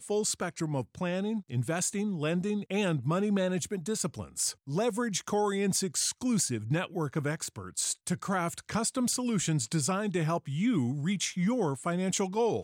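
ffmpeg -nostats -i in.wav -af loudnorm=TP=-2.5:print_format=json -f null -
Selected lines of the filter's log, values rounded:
"input_i" : "-30.4",
"input_tp" : "-16.9",
"input_lra" : "1.3",
"input_thresh" : "-40.4",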